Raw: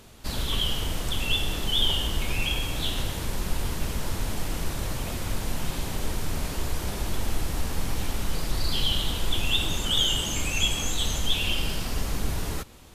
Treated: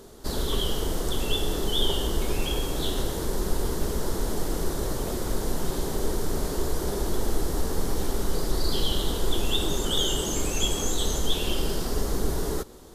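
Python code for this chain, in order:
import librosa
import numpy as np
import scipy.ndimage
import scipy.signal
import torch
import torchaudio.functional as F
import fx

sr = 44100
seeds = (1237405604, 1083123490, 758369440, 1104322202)

y = fx.graphic_eq_15(x, sr, hz=(100, 400, 2500), db=(-7, 10, -12))
y = F.gain(torch.from_numpy(y), 1.5).numpy()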